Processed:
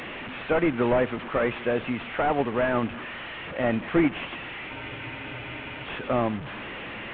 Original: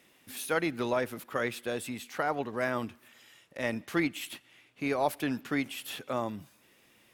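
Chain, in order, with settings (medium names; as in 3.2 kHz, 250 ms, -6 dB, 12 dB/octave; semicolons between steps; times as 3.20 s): one-bit delta coder 16 kbps, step -39 dBFS; spectral freeze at 4.72 s, 1.11 s; trim +9 dB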